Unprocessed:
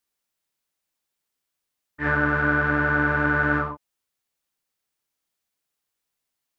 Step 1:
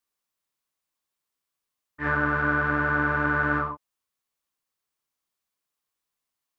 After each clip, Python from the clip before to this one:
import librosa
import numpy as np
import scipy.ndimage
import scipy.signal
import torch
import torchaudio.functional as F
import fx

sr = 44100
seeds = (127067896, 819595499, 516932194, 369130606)

y = fx.peak_eq(x, sr, hz=1100.0, db=7.0, octaves=0.29)
y = y * 10.0 ** (-3.5 / 20.0)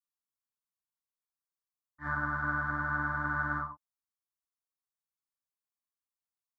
y = fx.fixed_phaser(x, sr, hz=1100.0, stages=4)
y = fx.upward_expand(y, sr, threshold_db=-38.0, expansion=1.5)
y = y * 10.0 ** (-5.5 / 20.0)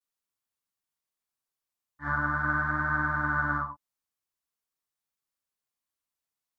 y = fx.vibrato(x, sr, rate_hz=0.44, depth_cents=40.0)
y = y * 10.0 ** (4.5 / 20.0)